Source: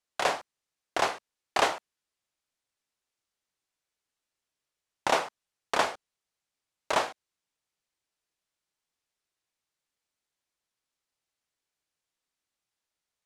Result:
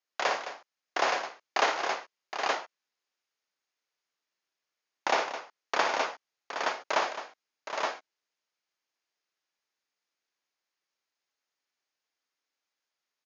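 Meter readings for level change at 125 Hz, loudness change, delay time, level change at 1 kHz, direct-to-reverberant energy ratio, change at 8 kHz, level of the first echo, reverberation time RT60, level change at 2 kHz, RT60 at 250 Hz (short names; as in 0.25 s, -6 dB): n/a, -1.5 dB, 59 ms, +1.0 dB, none, -1.5 dB, -6.5 dB, none, +2.5 dB, none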